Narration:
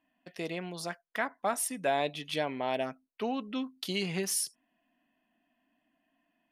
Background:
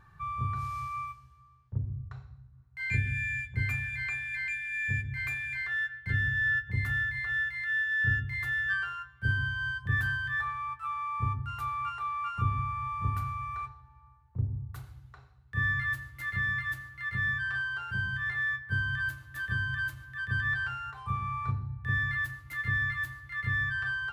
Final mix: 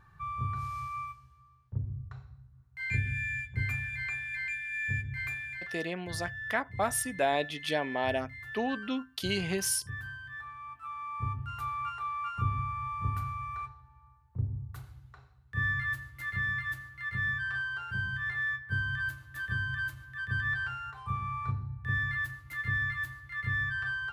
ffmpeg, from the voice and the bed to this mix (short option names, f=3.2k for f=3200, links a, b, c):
-filter_complex "[0:a]adelay=5350,volume=1dB[a];[1:a]volume=8.5dB,afade=t=out:st=5.21:d=0.67:silence=0.316228,afade=t=in:st=10.42:d=1.18:silence=0.316228[b];[a][b]amix=inputs=2:normalize=0"